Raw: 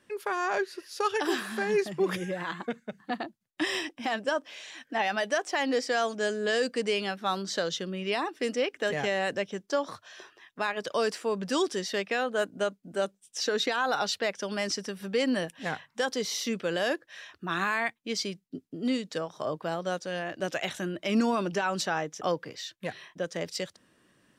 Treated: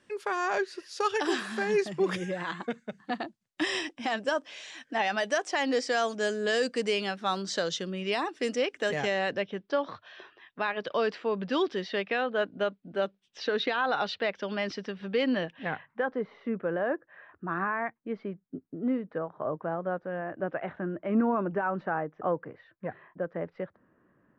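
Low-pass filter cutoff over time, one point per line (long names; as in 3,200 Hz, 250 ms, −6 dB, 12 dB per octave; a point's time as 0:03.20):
low-pass filter 24 dB per octave
0:08.95 8,900 Hz
0:09.50 3,800 Hz
0:15.42 3,800 Hz
0:16.20 1,600 Hz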